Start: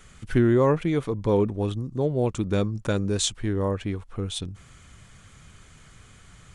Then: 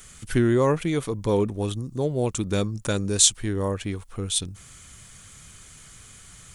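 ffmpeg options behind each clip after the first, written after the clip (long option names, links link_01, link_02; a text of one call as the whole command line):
ffmpeg -i in.wav -af "aemphasis=mode=production:type=75fm" out.wav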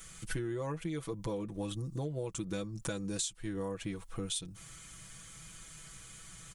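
ffmpeg -i in.wav -af "aecho=1:1:6.1:0.72,acompressor=threshold=-28dB:ratio=10,volume=-5.5dB" out.wav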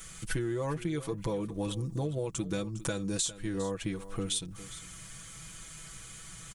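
ffmpeg -i in.wav -af "aecho=1:1:406:0.168,volume=4dB" out.wav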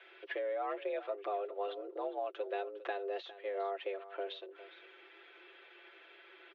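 ffmpeg -i in.wav -af "highpass=frequency=190:width_type=q:width=0.5412,highpass=frequency=190:width_type=q:width=1.307,lowpass=frequency=3000:width_type=q:width=0.5176,lowpass=frequency=3000:width_type=q:width=0.7071,lowpass=frequency=3000:width_type=q:width=1.932,afreqshift=200,volume=-2.5dB" -ar 16000 -c:a libmp3lame -b:a 48k out.mp3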